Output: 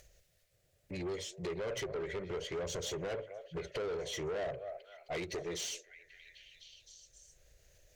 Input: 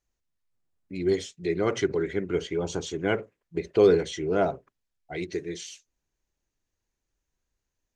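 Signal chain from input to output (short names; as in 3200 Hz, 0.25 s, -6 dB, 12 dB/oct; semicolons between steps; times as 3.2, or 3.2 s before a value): compressor 8:1, threshold -33 dBFS, peak gain reduction 19 dB; EQ curve 140 Hz 0 dB, 250 Hz -16 dB, 580 Hz +8 dB, 940 Hz -15 dB, 1800 Hz -1 dB; delay with a stepping band-pass 0.262 s, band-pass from 770 Hz, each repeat 0.7 oct, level -11 dB; upward compressor, threshold -55 dBFS; tube stage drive 40 dB, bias 0.2; gain +6 dB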